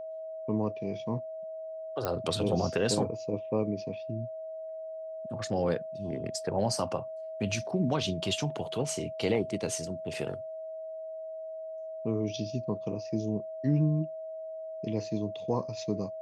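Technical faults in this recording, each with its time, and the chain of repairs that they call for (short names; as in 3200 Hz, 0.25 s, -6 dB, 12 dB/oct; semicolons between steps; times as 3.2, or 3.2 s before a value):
tone 640 Hz -37 dBFS
2.05 pop -16 dBFS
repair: de-click; notch 640 Hz, Q 30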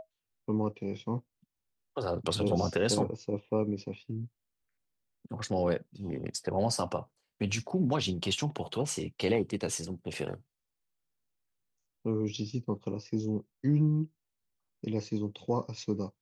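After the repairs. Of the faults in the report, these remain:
none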